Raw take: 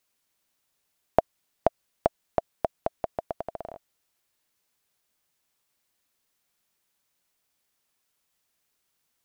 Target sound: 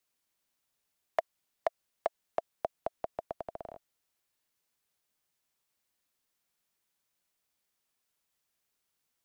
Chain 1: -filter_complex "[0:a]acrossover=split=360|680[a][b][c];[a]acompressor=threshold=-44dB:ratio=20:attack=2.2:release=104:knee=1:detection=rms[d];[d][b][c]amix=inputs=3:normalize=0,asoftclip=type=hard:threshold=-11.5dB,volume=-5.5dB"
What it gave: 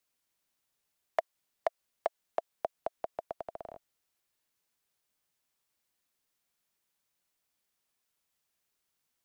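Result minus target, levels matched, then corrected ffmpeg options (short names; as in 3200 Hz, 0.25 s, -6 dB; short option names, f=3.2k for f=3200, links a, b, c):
compressor: peak gain reduction +7.5 dB
-filter_complex "[0:a]acrossover=split=360|680[a][b][c];[a]acompressor=threshold=-36dB:ratio=20:attack=2.2:release=104:knee=1:detection=rms[d];[d][b][c]amix=inputs=3:normalize=0,asoftclip=type=hard:threshold=-11.5dB,volume=-5.5dB"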